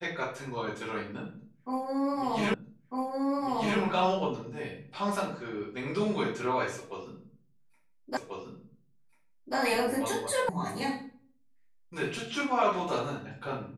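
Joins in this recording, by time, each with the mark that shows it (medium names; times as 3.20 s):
2.54 s: repeat of the last 1.25 s
8.17 s: repeat of the last 1.39 s
10.49 s: sound stops dead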